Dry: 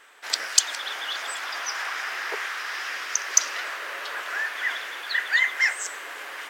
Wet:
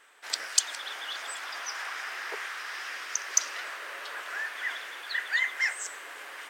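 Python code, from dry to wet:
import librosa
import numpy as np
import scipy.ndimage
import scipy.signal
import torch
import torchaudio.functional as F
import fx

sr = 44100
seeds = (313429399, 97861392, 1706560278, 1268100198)

y = fx.peak_eq(x, sr, hz=8700.0, db=4.5, octaves=0.27)
y = F.gain(torch.from_numpy(y), -6.0).numpy()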